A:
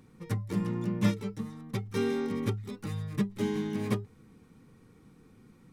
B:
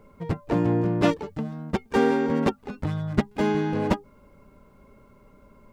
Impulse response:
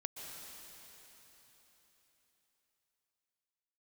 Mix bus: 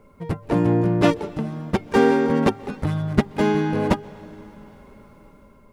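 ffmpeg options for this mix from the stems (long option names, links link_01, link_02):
-filter_complex "[0:a]equalizer=frequency=10000:width=2:gain=13.5,volume=-13.5dB[link_01];[1:a]volume=-0.5dB,asplit=2[link_02][link_03];[link_03]volume=-13dB[link_04];[2:a]atrim=start_sample=2205[link_05];[link_04][link_05]afir=irnorm=-1:irlink=0[link_06];[link_01][link_02][link_06]amix=inputs=3:normalize=0,dynaudnorm=framelen=110:gausssize=9:maxgain=4dB"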